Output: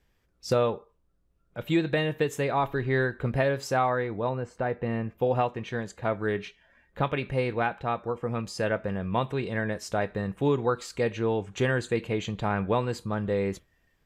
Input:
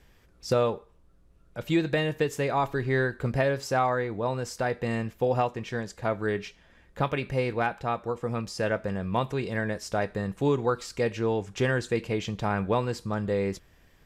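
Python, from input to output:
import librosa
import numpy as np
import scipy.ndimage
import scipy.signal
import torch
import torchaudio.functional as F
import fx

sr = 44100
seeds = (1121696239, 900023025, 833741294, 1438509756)

y = fx.lowpass(x, sr, hz=1500.0, slope=6, at=(4.29, 5.18))
y = fx.noise_reduce_blind(y, sr, reduce_db=11)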